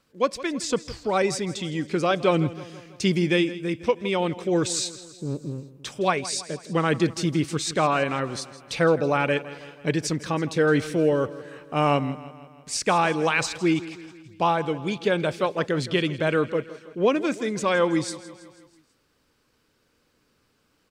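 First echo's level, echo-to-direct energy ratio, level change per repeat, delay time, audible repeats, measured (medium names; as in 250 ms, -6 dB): -16.5 dB, -15.0 dB, -5.0 dB, 163 ms, 4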